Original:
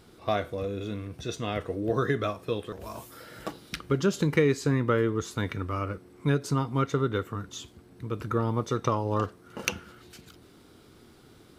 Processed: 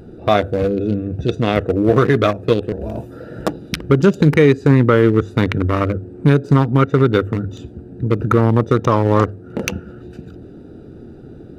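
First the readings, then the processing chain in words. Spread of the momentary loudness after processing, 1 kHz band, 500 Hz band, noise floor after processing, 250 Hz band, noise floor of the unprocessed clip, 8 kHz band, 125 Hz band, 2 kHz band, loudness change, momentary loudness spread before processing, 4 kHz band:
15 LU, +11.0 dB, +13.0 dB, −38 dBFS, +14.0 dB, −55 dBFS, can't be measured, +14.0 dB, +10.5 dB, +13.0 dB, 15 LU, +8.5 dB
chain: adaptive Wiener filter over 41 samples
mains-hum notches 50/100 Hz
in parallel at −3 dB: downward compressor, threshold −38 dBFS, peak gain reduction 18 dB
on the sum: boost into a limiter +15.5 dB
level −1 dB

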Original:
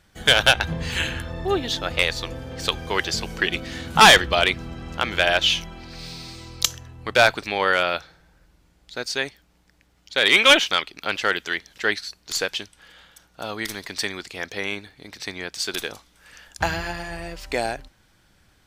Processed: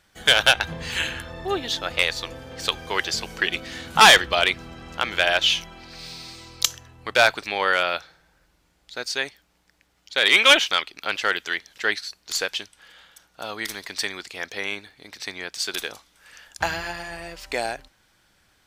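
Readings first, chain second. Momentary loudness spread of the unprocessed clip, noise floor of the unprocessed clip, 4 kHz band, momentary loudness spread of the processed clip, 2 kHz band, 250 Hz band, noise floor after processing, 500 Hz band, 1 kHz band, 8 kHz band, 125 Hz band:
19 LU, −61 dBFS, 0.0 dB, 20 LU, −0.5 dB, −5.0 dB, −65 dBFS, −2.5 dB, −1.0 dB, 0.0 dB, −7.5 dB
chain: low-shelf EQ 340 Hz −8.5 dB

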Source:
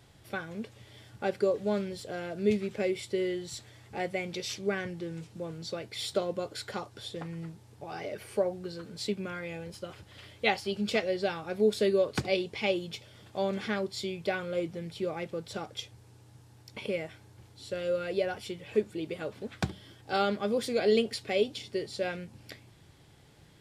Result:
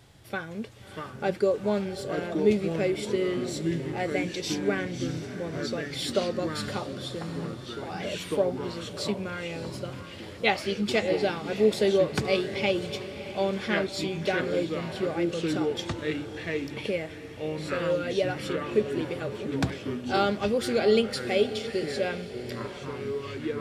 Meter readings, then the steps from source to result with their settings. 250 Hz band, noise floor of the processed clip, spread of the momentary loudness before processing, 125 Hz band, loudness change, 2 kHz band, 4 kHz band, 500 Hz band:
+5.5 dB, −42 dBFS, 14 LU, +6.5 dB, +4.0 dB, +4.5 dB, +4.0 dB, +4.0 dB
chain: delay with pitch and tempo change per echo 553 ms, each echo −4 semitones, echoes 3, each echo −6 dB
feedback delay with all-pass diffusion 647 ms, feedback 48%, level −12.5 dB
level +3 dB

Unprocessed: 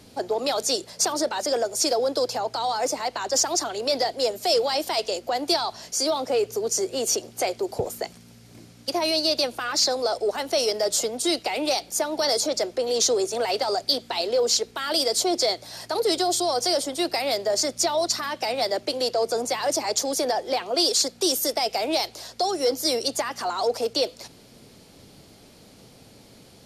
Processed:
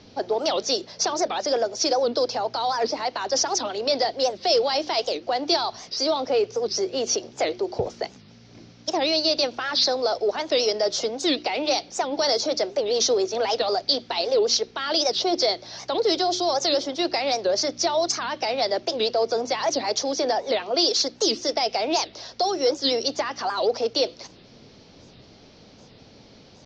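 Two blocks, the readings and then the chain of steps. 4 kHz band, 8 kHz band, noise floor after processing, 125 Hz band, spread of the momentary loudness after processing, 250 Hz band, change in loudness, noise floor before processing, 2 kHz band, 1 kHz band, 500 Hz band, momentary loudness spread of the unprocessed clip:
+1.0 dB, −4.0 dB, −50 dBFS, 0.0 dB, 6 LU, +0.5 dB, +0.5 dB, −51 dBFS, +0.5 dB, +1.0 dB, +1.5 dB, 6 LU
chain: Chebyshev low-pass filter 5,900 Hz, order 5
mains-hum notches 60/120/180/240/300/360 Hz
wow of a warped record 78 rpm, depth 250 cents
level +1.5 dB

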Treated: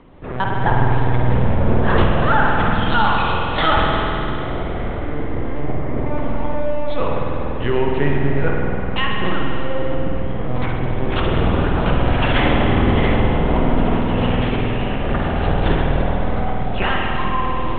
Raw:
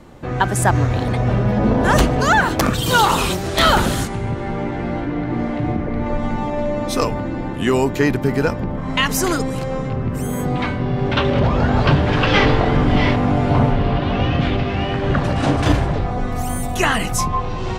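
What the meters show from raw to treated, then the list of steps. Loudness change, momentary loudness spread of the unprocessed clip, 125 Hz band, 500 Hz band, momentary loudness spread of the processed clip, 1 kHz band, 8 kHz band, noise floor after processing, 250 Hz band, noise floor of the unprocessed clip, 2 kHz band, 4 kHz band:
−1.5 dB, 9 LU, −1.5 dB, −1.0 dB, 8 LU, −0.5 dB, below −40 dB, −22 dBFS, −2.0 dB, −25 dBFS, −1.5 dB, −3.5 dB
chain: linear-prediction vocoder at 8 kHz pitch kept
spring reverb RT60 3 s, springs 49 ms, chirp 25 ms, DRR −1 dB
level −4 dB

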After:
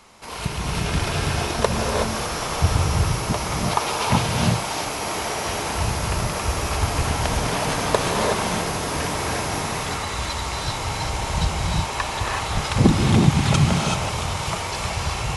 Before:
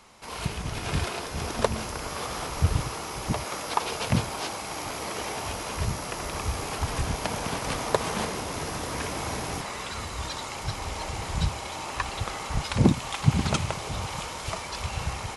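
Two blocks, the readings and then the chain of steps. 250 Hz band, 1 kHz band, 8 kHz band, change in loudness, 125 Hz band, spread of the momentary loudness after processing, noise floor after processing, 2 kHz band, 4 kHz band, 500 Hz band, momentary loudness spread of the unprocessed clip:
+7.0 dB, +7.0 dB, +7.0 dB, +7.0 dB, +7.5 dB, 7 LU, −28 dBFS, +7.5 dB, +7.5 dB, +7.0 dB, 7 LU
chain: reverb whose tail is shaped and stops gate 400 ms rising, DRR −1.5 dB
level +3.5 dB

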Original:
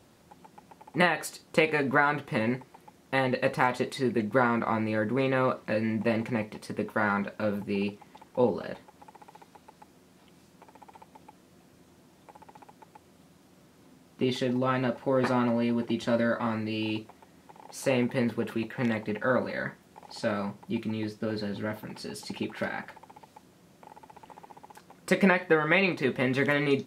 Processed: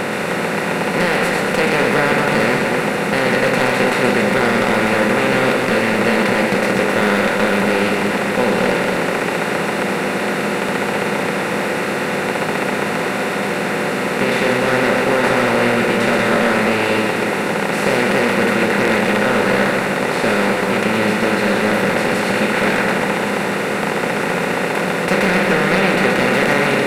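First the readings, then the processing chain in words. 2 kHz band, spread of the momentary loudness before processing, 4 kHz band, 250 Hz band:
+15.5 dB, 12 LU, +16.5 dB, +11.5 dB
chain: compressor on every frequency bin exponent 0.2
hard clipping −10 dBFS, distortion −16 dB
echo with a time of its own for lows and highs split 1,600 Hz, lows 236 ms, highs 126 ms, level −4.5 dB

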